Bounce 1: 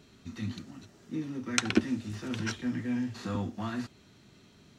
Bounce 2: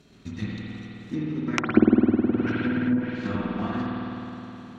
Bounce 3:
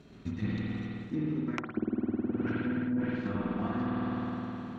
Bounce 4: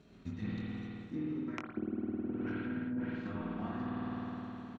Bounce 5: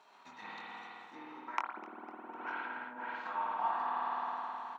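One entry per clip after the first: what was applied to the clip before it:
transient designer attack +7 dB, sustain −7 dB; spring reverb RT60 3.5 s, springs 52 ms, chirp 35 ms, DRR −5 dB; treble cut that deepens with the level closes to 820 Hz, closed at −17.5 dBFS
high-shelf EQ 3,200 Hz −11 dB; reversed playback; downward compressor 10 to 1, threshold −30 dBFS, peak gain reduction 20 dB; reversed playback; level +2 dB
double-tracking delay 23 ms −7.5 dB; level −6.5 dB
high-pass with resonance 910 Hz, resonance Q 6.6; feedback echo with a swinging delay time 252 ms, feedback 53%, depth 132 cents, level −19 dB; level +2.5 dB

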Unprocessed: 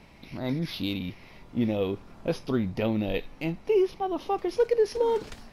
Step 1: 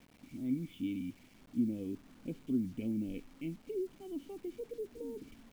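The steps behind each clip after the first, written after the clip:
treble cut that deepens with the level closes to 930 Hz, closed at −20 dBFS
formant resonators in series i
bit-depth reduction 10 bits, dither none
level −1.5 dB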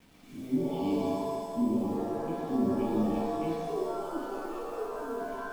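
reverb with rising layers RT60 1.5 s, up +7 semitones, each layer −2 dB, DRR −3.5 dB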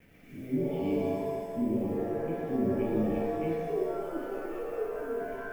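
octave-band graphic EQ 125/250/500/1,000/2,000/4,000/8,000 Hz +4/−5/+5/−12/+9/−12/−8 dB
level +1.5 dB

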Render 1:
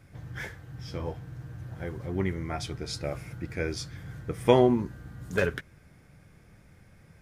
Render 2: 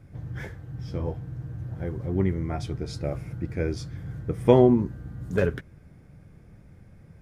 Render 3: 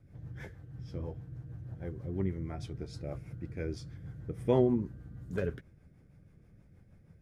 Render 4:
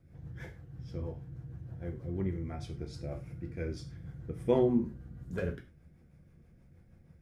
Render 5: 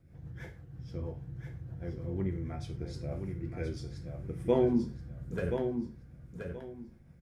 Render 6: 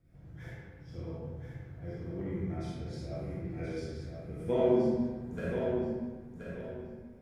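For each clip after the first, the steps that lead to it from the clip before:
tilt shelving filter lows +6 dB, about 810 Hz
rotating-speaker cabinet horn 6.3 Hz; level −7.5 dB
reverb whose tail is shaped and stops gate 130 ms falling, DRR 4 dB; level −1.5 dB
repeating echo 1,026 ms, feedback 24%, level −6.5 dB
comb and all-pass reverb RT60 1.5 s, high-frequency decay 0.65×, pre-delay 0 ms, DRR −7 dB; level −6.5 dB

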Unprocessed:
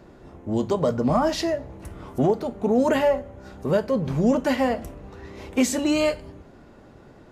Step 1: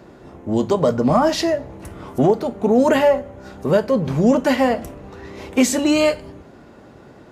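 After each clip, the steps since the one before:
high-pass filter 97 Hz 6 dB per octave
level +5.5 dB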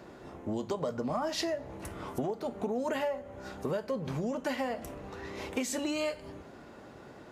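downward compressor 10 to 1, threshold −24 dBFS, peak gain reduction 14 dB
low-shelf EQ 410 Hz −5.5 dB
level −3 dB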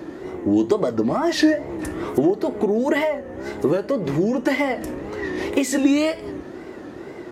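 hollow resonant body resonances 340/1,900 Hz, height 12 dB, ringing for 30 ms
tape wow and flutter 130 cents
level +8.5 dB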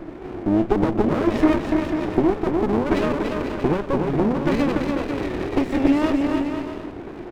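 Savitzky-Golay smoothing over 25 samples
bouncing-ball delay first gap 290 ms, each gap 0.7×, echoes 5
windowed peak hold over 33 samples

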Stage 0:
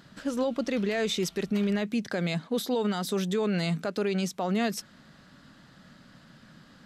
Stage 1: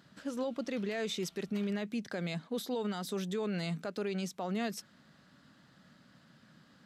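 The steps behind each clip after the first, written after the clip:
high-pass filter 76 Hz
level −7.5 dB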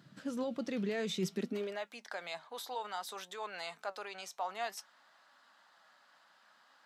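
flanger 0.58 Hz, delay 2.8 ms, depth 4.4 ms, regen +81%
high-pass filter sweep 130 Hz → 850 Hz, 0:01.26–0:01.84
level +2.5 dB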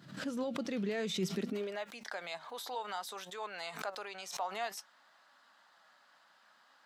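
background raised ahead of every attack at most 92 dB per second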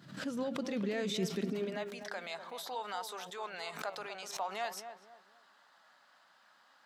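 feedback echo with a low-pass in the loop 247 ms, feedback 36%, low-pass 1,000 Hz, level −7.5 dB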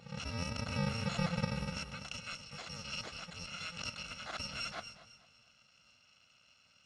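samples in bit-reversed order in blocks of 128 samples
Gaussian smoothing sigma 1.9 samples
feedback echo with a swinging delay time 228 ms, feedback 35%, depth 51 cents, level −17 dB
level +8 dB

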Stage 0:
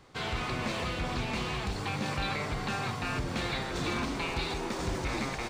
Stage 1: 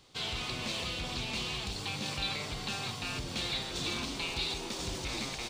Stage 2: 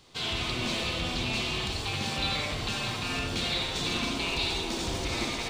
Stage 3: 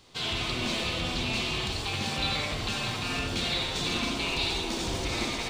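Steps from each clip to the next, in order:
high shelf with overshoot 2,400 Hz +8.5 dB, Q 1.5; level −6 dB
convolution reverb, pre-delay 63 ms, DRR 0 dB; level +3 dB
flanger 1.5 Hz, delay 2.8 ms, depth 5.7 ms, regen −82%; level +5 dB

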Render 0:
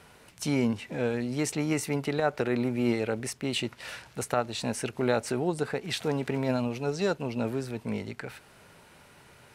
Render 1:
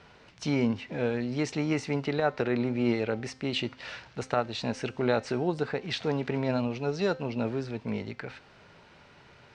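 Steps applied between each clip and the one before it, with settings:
low-pass filter 5,500 Hz 24 dB per octave
hum removal 260 Hz, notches 38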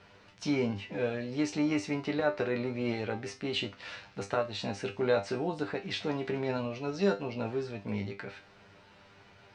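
tuned comb filter 99 Hz, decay 0.21 s, harmonics all, mix 90%
level +5 dB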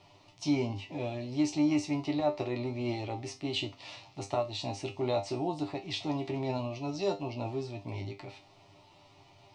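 phaser with its sweep stopped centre 310 Hz, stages 8
level +2.5 dB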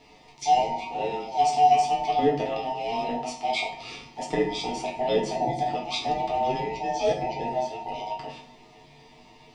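frequency inversion band by band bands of 1,000 Hz
convolution reverb RT60 0.75 s, pre-delay 4 ms, DRR 1 dB
level +4 dB

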